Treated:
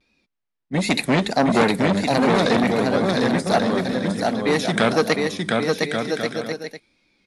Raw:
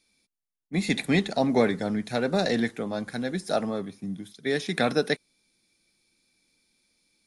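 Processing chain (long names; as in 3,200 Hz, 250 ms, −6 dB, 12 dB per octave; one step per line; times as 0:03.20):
tape wow and flutter 120 cents
low-pass that shuts in the quiet parts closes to 2,900 Hz, open at −27 dBFS
bouncing-ball delay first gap 710 ms, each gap 0.6×, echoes 5
saturating transformer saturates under 1,300 Hz
level +8 dB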